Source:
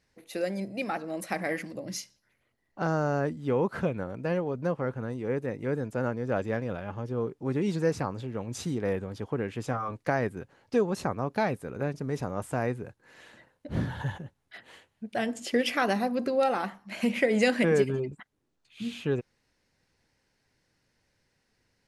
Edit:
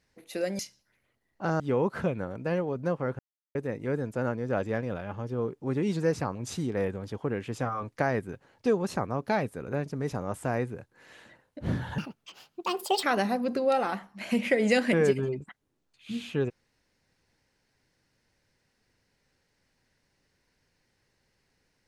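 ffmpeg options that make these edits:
-filter_complex "[0:a]asplit=8[a][b][c][d][e][f][g][h];[a]atrim=end=0.592[i];[b]atrim=start=1.958:end=2.972[j];[c]atrim=start=3.388:end=4.98,asetpts=PTS-STARTPTS,afade=t=out:st=1.588:d=0.004:c=hsin[k];[d]atrim=start=4.98:end=5.34,asetpts=PTS-STARTPTS,volume=0[l];[e]atrim=start=5.34:end=8.142,asetpts=PTS-STARTPTS,afade=t=in:d=0.004:c=hsin[m];[f]atrim=start=8.428:end=14.064[n];[g]atrim=start=14.06:end=15.74,asetpts=PTS-STARTPTS,asetrate=70560,aresample=44100[o];[h]atrim=start=15.736[p];[i][j]acrossfade=d=0.004:c1=hsin:c2=hsin[q];[k][l][m]concat=n=3:v=0:a=1[r];[q][r]acrossfade=d=0.004:c1=hsin:c2=hsin[s];[s][n]acrossfade=d=0.004:c1=hsin:c2=hsin[t];[t][o]acrossfade=d=0.004:c1=hsin:c2=hsin[u];[u][p]acrossfade=d=0.004:c1=hsin:c2=hsin"

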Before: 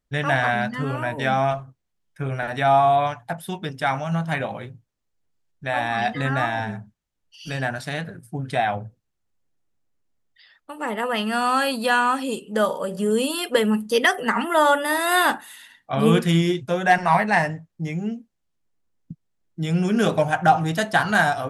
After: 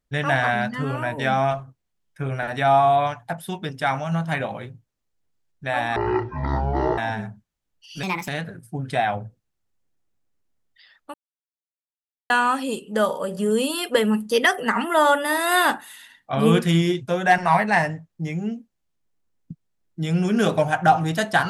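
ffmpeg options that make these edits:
-filter_complex "[0:a]asplit=7[a][b][c][d][e][f][g];[a]atrim=end=5.964[h];[b]atrim=start=5.96:end=6.48,asetpts=PTS-STARTPTS,asetrate=22491,aresample=44100[i];[c]atrim=start=6.476:end=7.534[j];[d]atrim=start=7.53:end=7.88,asetpts=PTS-STARTPTS,asetrate=61740,aresample=44100[k];[e]atrim=start=7.876:end=10.74,asetpts=PTS-STARTPTS,afade=t=out:st=2.86:d=0.004:c=hsin[l];[f]atrim=start=10.74:end=11.9,asetpts=PTS-STARTPTS,volume=0[m];[g]atrim=start=11.9,asetpts=PTS-STARTPTS,afade=t=in:d=0.004:c=hsin[n];[h][i]acrossfade=d=0.004:c1=hsin:c2=hsin[o];[o][j]acrossfade=d=0.004:c1=hsin:c2=hsin[p];[p][k]acrossfade=d=0.004:c1=hsin:c2=hsin[q];[l][m][n]concat=n=3:v=0:a=1[r];[q][r]acrossfade=d=0.004:c1=hsin:c2=hsin"

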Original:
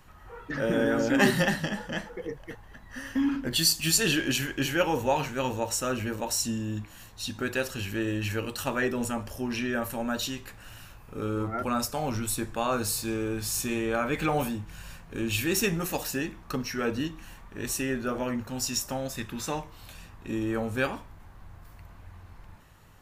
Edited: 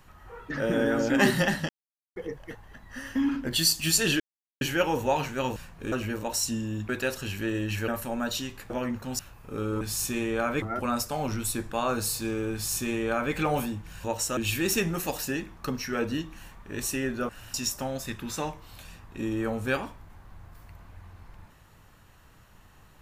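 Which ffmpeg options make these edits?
-filter_complex "[0:a]asplit=17[a][b][c][d][e][f][g][h][i][j][k][l][m][n][o][p][q];[a]atrim=end=1.69,asetpts=PTS-STARTPTS,afade=t=out:st=1.686:d=0.004:c=hsin[r];[b]atrim=start=1.69:end=2.16,asetpts=PTS-STARTPTS,volume=0[s];[c]atrim=start=2.16:end=4.2,asetpts=PTS-STARTPTS,afade=t=in:d=0.004:c=hsin,afade=t=out:st=2.036:d=0.004:c=hsin[t];[d]atrim=start=4.2:end=4.61,asetpts=PTS-STARTPTS,volume=0[u];[e]atrim=start=4.61:end=5.562,asetpts=PTS-STARTPTS,afade=t=in:d=0.004:c=hsin[v];[f]atrim=start=14.868:end=15.232[w];[g]atrim=start=5.888:end=6.862[x];[h]atrim=start=7.418:end=8.412[y];[i]atrim=start=9.758:end=10.582[z];[j]atrim=start=18.148:end=18.642[aa];[k]atrim=start=10.828:end=11.452[ab];[l]atrim=start=13.358:end=14.172[ac];[m]atrim=start=11.448:end=14.872[ad];[n]atrim=start=5.558:end=5.892[ae];[o]atrim=start=15.228:end=18.152[af];[p]atrim=start=10.578:end=10.832[ag];[q]atrim=start=18.638[ah];[r][s][t][u][v]concat=n=5:v=0:a=1[ai];[ai][w]acrossfade=d=0.004:c1=hsin:c2=hsin[aj];[aj][x]acrossfade=d=0.004:c1=hsin:c2=hsin[ak];[ak][y]acrossfade=d=0.004:c1=hsin:c2=hsin[al];[al][z]acrossfade=d=0.004:c1=hsin:c2=hsin[am];[am][aa]acrossfade=d=0.004:c1=hsin:c2=hsin[an];[an][ab]acrossfade=d=0.004:c1=hsin:c2=hsin[ao];[ao][ac]acrossfade=d=0.004:c1=hsin:c2=hsin[ap];[ap][ad]acrossfade=d=0.004:c1=hsin:c2=hsin[aq];[aq][ae]acrossfade=d=0.004:c1=hsin:c2=hsin[ar];[ar][af]acrossfade=d=0.004:c1=hsin:c2=hsin[as];[as][ag]acrossfade=d=0.004:c1=hsin:c2=hsin[at];[at][ah]acrossfade=d=0.004:c1=hsin:c2=hsin"

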